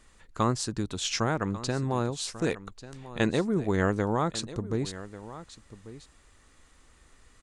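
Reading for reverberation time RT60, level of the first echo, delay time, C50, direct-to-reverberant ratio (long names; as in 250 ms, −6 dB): no reverb audible, −15.5 dB, 1,142 ms, no reverb audible, no reverb audible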